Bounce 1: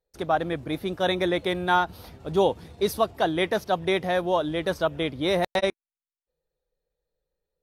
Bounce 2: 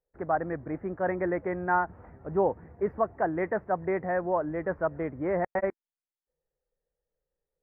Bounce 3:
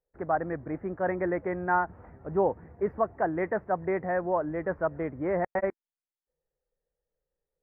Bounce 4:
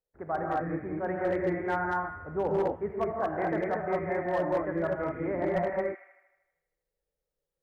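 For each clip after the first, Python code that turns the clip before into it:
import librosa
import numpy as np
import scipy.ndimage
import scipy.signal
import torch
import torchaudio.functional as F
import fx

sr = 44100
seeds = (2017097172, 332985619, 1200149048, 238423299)

y1 = scipy.signal.sosfilt(scipy.signal.ellip(4, 1.0, 50, 1900.0, 'lowpass', fs=sr, output='sos'), x)
y1 = F.gain(torch.from_numpy(y1), -3.5).numpy()
y2 = y1
y3 = fx.echo_wet_highpass(y2, sr, ms=78, feedback_pct=61, hz=1700.0, wet_db=-6.5)
y3 = fx.rev_gated(y3, sr, seeds[0], gate_ms=260, shape='rising', drr_db=-3.0)
y3 = np.clip(y3, -10.0 ** (-16.0 / 20.0), 10.0 ** (-16.0 / 20.0))
y3 = F.gain(torch.from_numpy(y3), -5.5).numpy()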